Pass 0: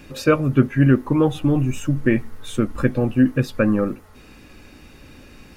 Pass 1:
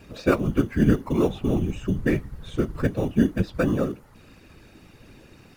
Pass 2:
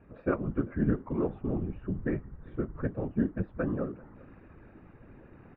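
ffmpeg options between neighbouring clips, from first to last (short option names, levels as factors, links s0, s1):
-filter_complex "[0:a]acrossover=split=5200[s0][s1];[s1]acompressor=threshold=0.00158:ratio=4:attack=1:release=60[s2];[s0][s2]amix=inputs=2:normalize=0,asplit=2[s3][s4];[s4]acrusher=samples=14:mix=1:aa=0.000001,volume=0.251[s5];[s3][s5]amix=inputs=2:normalize=0,afftfilt=real='hypot(re,im)*cos(2*PI*random(0))':imag='hypot(re,im)*sin(2*PI*random(1))':win_size=512:overlap=0.75"
-af "lowpass=f=1800:w=0.5412,lowpass=f=1800:w=1.3066,areverse,acompressor=mode=upward:threshold=0.0178:ratio=2.5,areverse,aecho=1:1:393:0.0668,volume=0.376"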